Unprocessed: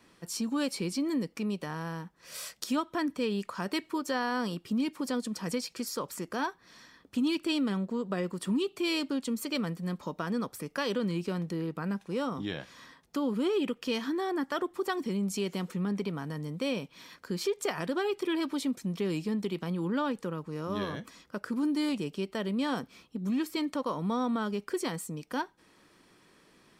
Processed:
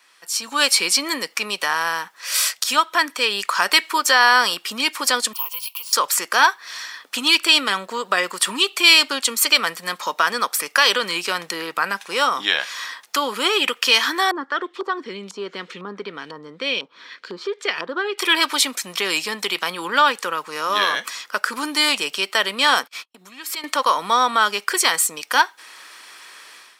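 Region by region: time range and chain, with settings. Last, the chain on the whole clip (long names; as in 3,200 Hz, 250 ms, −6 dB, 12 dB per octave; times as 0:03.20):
0:05.33–0:05.93: downward compressor 2.5 to 1, threshold −36 dBFS + pair of resonant band-passes 1,700 Hz, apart 1.5 octaves + bad sample-rate conversion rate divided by 3×, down none, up zero stuff
0:14.31–0:18.18: flat-topped bell 1,300 Hz −14.5 dB 2.4 octaves + auto-filter low-pass saw up 2 Hz 980–2,900 Hz
0:22.83–0:23.64: notch filter 6,000 Hz, Q 26 + downward compressor 12 to 1, threshold −42 dBFS + noise gate −56 dBFS, range −38 dB
whole clip: high-pass filter 1,200 Hz 12 dB per octave; automatic gain control gain up to 14 dB; boost into a limiter +10 dB; level −1 dB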